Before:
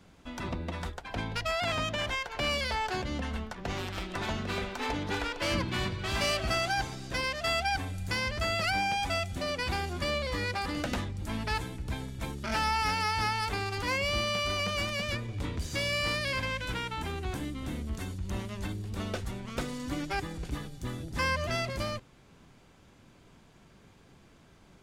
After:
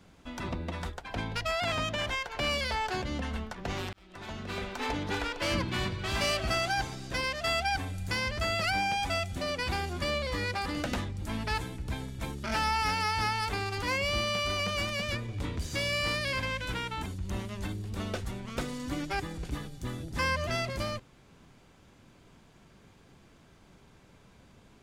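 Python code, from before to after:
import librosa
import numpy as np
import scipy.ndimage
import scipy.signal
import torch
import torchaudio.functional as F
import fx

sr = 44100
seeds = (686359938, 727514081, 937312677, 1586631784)

y = fx.edit(x, sr, fx.fade_in_span(start_s=3.93, length_s=0.87),
    fx.cut(start_s=17.06, length_s=1.0), tone=tone)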